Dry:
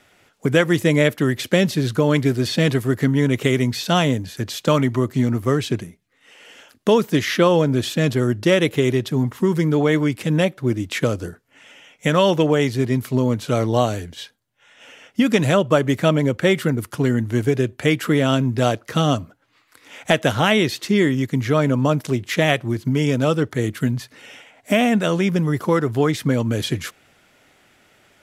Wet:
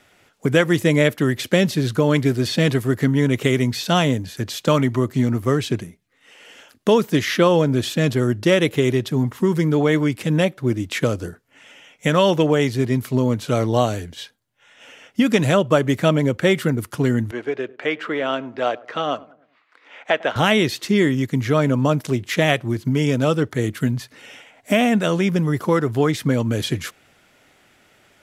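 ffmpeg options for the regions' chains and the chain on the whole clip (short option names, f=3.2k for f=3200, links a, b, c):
-filter_complex "[0:a]asettb=1/sr,asplit=3[a][b][c];[a]atrim=end=17.314[d];[b]atrim=start=17.31:end=20.36,asetpts=PTS-STARTPTS,afade=t=in:d=0.004:c=qsin,afade=t=out:st=3.046:d=0.004:c=qsin,highpass=470,lowpass=2.7k,asplit=2[e][f];[f]adelay=101,lowpass=f=970:p=1,volume=-20dB,asplit=2[g][h];[h]adelay=101,lowpass=f=970:p=1,volume=0.5,asplit=2[i][j];[j]adelay=101,lowpass=f=970:p=1,volume=0.5,asplit=2[k][l];[l]adelay=101,lowpass=f=970:p=1,volume=0.5[m];[e][g][i][k][m]amix=inputs=5:normalize=0,atrim=end_sample=134505[n];[c]atrim=start=20.356[o];[d][n]acrossfade=d=0.004:c1=hsin:c2=qsin[p];[p][o]acrossfade=d=0.004:c1=qsin:c2=hsin"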